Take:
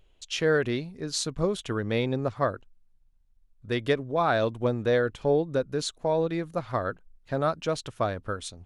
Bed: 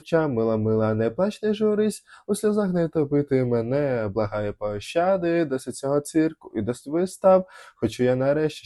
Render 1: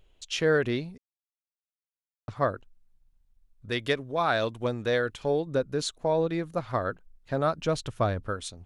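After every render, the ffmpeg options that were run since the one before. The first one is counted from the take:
-filter_complex "[0:a]asettb=1/sr,asplit=3[s0][s1][s2];[s0]atrim=end=3.704[s3];[s1]atrim=start=3.7:end=5.47,asetpts=PTS-STARTPTS,afade=t=in:d=0.004:c=qsin,afade=t=out:st=1.766:d=0.004:c=qsin,tiltshelf=f=1300:g=-4[s4];[s2]atrim=start=5.466[s5];[s3][s4]acrossfade=d=0.004:c1=hsin:c2=qsin[s6];[s6][s5]acrossfade=d=0.004:c1=qsin:c2=hsin,asettb=1/sr,asplit=3[s7][s8][s9];[s7]atrim=end=7.584[s10];[s8]atrim=start=7.58:end=8.26,asetpts=PTS-STARTPTS,afade=t=in:d=0.004:c=qsin,afade=t=out:st=0.676:d=0.004:c=qsin,lowshelf=f=140:g=9[s11];[s9]atrim=start=8.256[s12];[s10][s11]acrossfade=d=0.004:c1=hsin:c2=qsin[s13];[s13][s12]acrossfade=d=0.004:c1=qsin:c2=hsin,asplit=3[s14][s15][s16];[s14]atrim=end=0.98,asetpts=PTS-STARTPTS,afade=t=out:st=0.976:d=0.004:c=hsin[s17];[s15]atrim=start=0.98:end=2.28,asetpts=PTS-STARTPTS,volume=0[s18];[s16]atrim=start=2.28,asetpts=PTS-STARTPTS,afade=t=in:d=0.004:c=hsin[s19];[s17][s18][s19]concat=n=3:v=0:a=1"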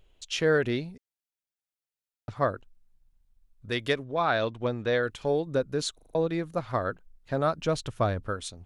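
-filter_complex "[0:a]asettb=1/sr,asplit=3[s0][s1][s2];[s0]atrim=end=0.584[s3];[s1]atrim=start=0.58:end=2.33,asetpts=PTS-STARTPTS,afade=t=in:d=0.004:c=qsin,afade=t=out:st=1.746:d=0.004:c=qsin,asuperstop=centerf=1100:order=4:qfactor=6.9[s4];[s2]atrim=start=2.326[s5];[s3][s4]acrossfade=d=0.004:c1=hsin:c2=qsin[s6];[s6][s5]acrossfade=d=0.004:c1=qsin:c2=hsin,asettb=1/sr,asplit=3[s7][s8][s9];[s7]atrim=end=4.044[s10];[s8]atrim=start=4.04:end=5.03,asetpts=PTS-STARTPTS,afade=t=in:d=0.004:c=qsin,afade=t=out:st=0.986:d=0.004:c=qsin,lowpass=4500[s11];[s9]atrim=start=5.026[s12];[s10][s11]acrossfade=d=0.004:c1=hsin:c2=qsin[s13];[s13][s12]acrossfade=d=0.004:c1=qsin:c2=hsin,asplit=6[s14][s15][s16][s17][s18][s19];[s14]atrim=end=5.992[s20];[s15]atrim=start=5.948:end=5.992[s21];[s16]atrim=start=5.948:end=5.992[s22];[s17]atrim=start=5.948:end=5.992[s23];[s18]atrim=start=5.948:end=5.992[s24];[s19]atrim=start=6.148[s25];[s20][s21]acrossfade=d=0.004:c1=hsin:c2=hsin[s26];[s26][s22]acrossfade=d=0.004:c1=hsin:c2=hsin[s27];[s27][s23]acrossfade=d=0.004:c1=hsin:c2=hsin[s28];[s28][s24]acrossfade=d=0.004:c1=hsin:c2=hsin[s29];[s29][s25]acrossfade=d=0.004:c1=hsin:c2=hsin"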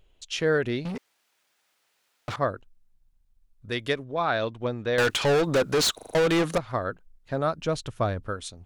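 -filter_complex "[0:a]asettb=1/sr,asplit=3[s0][s1][s2];[s0]atrim=end=0.854[s3];[s1]atrim=start=0.85:end=2.36,asetpts=PTS-STARTPTS,afade=t=in:d=0.004:c=qsin,afade=t=out:st=1.506:d=0.004:c=qsin,asplit=2[s4][s5];[s5]highpass=f=720:p=1,volume=63.1,asoftclip=type=tanh:threshold=0.0668[s6];[s4][s6]amix=inputs=2:normalize=0,lowpass=f=2600:p=1,volume=0.501[s7];[s2]atrim=start=2.356[s8];[s3][s7]acrossfade=d=0.004:c1=hsin:c2=qsin[s9];[s9][s8]acrossfade=d=0.004:c1=qsin:c2=hsin,asettb=1/sr,asplit=3[s10][s11][s12];[s10]atrim=end=4.984[s13];[s11]atrim=start=4.98:end=6.58,asetpts=PTS-STARTPTS,afade=t=in:d=0.004:c=qsin,afade=t=out:st=1.596:d=0.004:c=qsin,asplit=2[s14][s15];[s15]highpass=f=720:p=1,volume=31.6,asoftclip=type=tanh:threshold=0.178[s16];[s14][s16]amix=inputs=2:normalize=0,lowpass=f=7300:p=1,volume=0.501[s17];[s12]atrim=start=6.576[s18];[s13][s17]acrossfade=d=0.004:c1=hsin:c2=qsin[s19];[s19][s18]acrossfade=d=0.004:c1=qsin:c2=hsin"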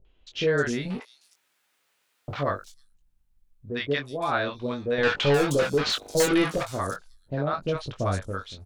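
-filter_complex "[0:a]asplit=2[s0][s1];[s1]adelay=21,volume=0.501[s2];[s0][s2]amix=inputs=2:normalize=0,acrossover=split=680|5200[s3][s4][s5];[s4]adelay=50[s6];[s5]adelay=360[s7];[s3][s6][s7]amix=inputs=3:normalize=0"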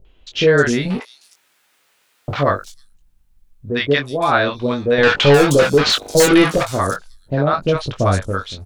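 -af "volume=3.35,alimiter=limit=0.891:level=0:latency=1"

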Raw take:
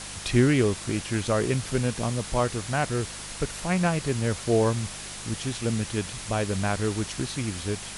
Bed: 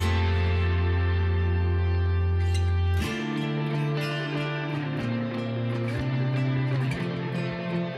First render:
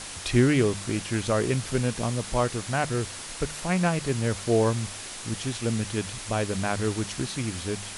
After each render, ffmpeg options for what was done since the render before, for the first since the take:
-af "bandreject=f=50:t=h:w=4,bandreject=f=100:t=h:w=4,bandreject=f=150:t=h:w=4,bandreject=f=200:t=h:w=4"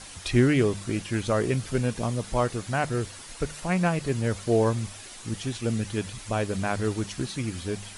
-af "afftdn=nr=8:nf=-39"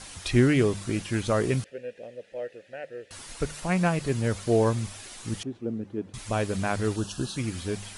-filter_complex "[0:a]asettb=1/sr,asplit=3[s0][s1][s2];[s0]atrim=end=1.644[s3];[s1]atrim=start=1.64:end=3.11,asetpts=PTS-STARTPTS,afade=t=in:d=0.004:c=qsin,afade=t=out:st=1.466:d=0.004:c=qsin,asplit=3[s4][s5][s6];[s4]bandpass=f=530:t=q:w=8,volume=1[s7];[s5]bandpass=f=1840:t=q:w=8,volume=0.501[s8];[s6]bandpass=f=2480:t=q:w=8,volume=0.355[s9];[s7][s8][s9]amix=inputs=3:normalize=0[s10];[s2]atrim=start=3.106[s11];[s3][s10]acrossfade=d=0.004:c1=hsin:c2=qsin[s12];[s12][s11]acrossfade=d=0.004:c1=qsin:c2=hsin,asettb=1/sr,asplit=3[s13][s14][s15];[s13]atrim=end=5.434[s16];[s14]atrim=start=5.43:end=6.14,asetpts=PTS-STARTPTS,afade=t=in:d=0.004:c=qsin,afade=t=out:st=0.706:d=0.004:c=qsin,bandpass=f=320:t=q:w=1.4[s17];[s15]atrim=start=6.136[s18];[s16][s17]acrossfade=d=0.004:c1=hsin:c2=qsin[s19];[s19][s18]acrossfade=d=0.004:c1=qsin:c2=hsin,asettb=1/sr,asplit=3[s20][s21][s22];[s20]atrim=end=6.964[s23];[s21]atrim=start=6.96:end=7.37,asetpts=PTS-STARTPTS,afade=t=in:d=0.004:c=qsin,afade=t=out:st=0.406:d=0.004:c=qsin,asuperstop=centerf=2100:order=8:qfactor=2.5[s24];[s22]atrim=start=7.366[s25];[s23][s24]acrossfade=d=0.004:c1=hsin:c2=qsin[s26];[s26][s25]acrossfade=d=0.004:c1=qsin:c2=hsin"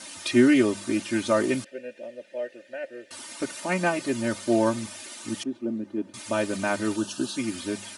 -af "highpass=f=140:w=0.5412,highpass=f=140:w=1.3066,aecho=1:1:3.3:0.91"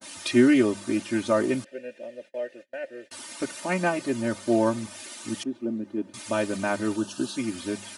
-af "agate=range=0.0398:threshold=0.00562:ratio=16:detection=peak,adynamicequalizer=threshold=0.00891:dfrequency=1600:dqfactor=0.7:tfrequency=1600:tqfactor=0.7:attack=5:release=100:ratio=0.375:range=2.5:mode=cutabove:tftype=highshelf"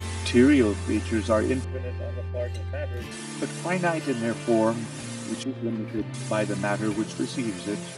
-filter_complex "[1:a]volume=0.376[s0];[0:a][s0]amix=inputs=2:normalize=0"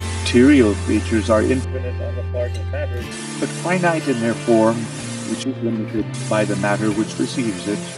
-af "volume=2.37,alimiter=limit=0.708:level=0:latency=1"

